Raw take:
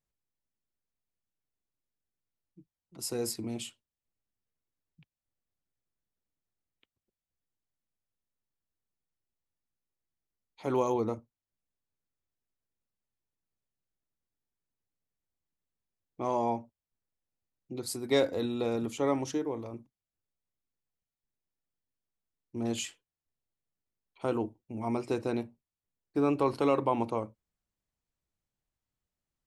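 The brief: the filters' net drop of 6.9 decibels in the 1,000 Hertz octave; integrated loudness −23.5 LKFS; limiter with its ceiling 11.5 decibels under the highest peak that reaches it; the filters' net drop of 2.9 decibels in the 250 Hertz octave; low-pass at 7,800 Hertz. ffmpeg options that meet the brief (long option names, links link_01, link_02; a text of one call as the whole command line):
ffmpeg -i in.wav -af "lowpass=7800,equalizer=frequency=250:width_type=o:gain=-3,equalizer=frequency=1000:width_type=o:gain=-8.5,volume=16.5dB,alimiter=limit=-12dB:level=0:latency=1" out.wav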